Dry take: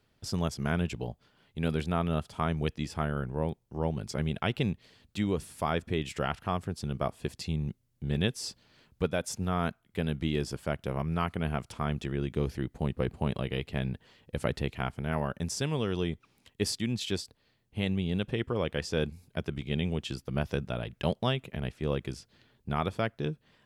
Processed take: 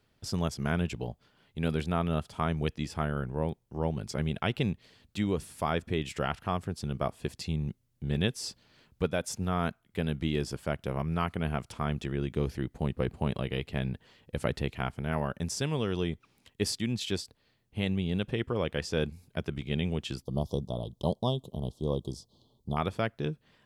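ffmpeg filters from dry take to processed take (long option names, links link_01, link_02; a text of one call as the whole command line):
ffmpeg -i in.wav -filter_complex "[0:a]asettb=1/sr,asplit=3[link_01][link_02][link_03];[link_01]atrim=end=20.224[link_04];[link_02]atrim=start=20.22:end=22.77,asetpts=PTS-STARTPTS,afade=type=in:duration=0.004:curve=qsin,afade=type=out:start_time=2.546:duration=0.004:curve=qsin,asuperstop=centerf=1900:order=12:qfactor=0.88[link_05];[link_03]atrim=start=22.766[link_06];[link_04][link_05]acrossfade=duration=0.004:curve1=hsin:curve2=qsin[link_07];[link_07][link_06]acrossfade=duration=0.004:curve1=qsin:curve2=hsin" out.wav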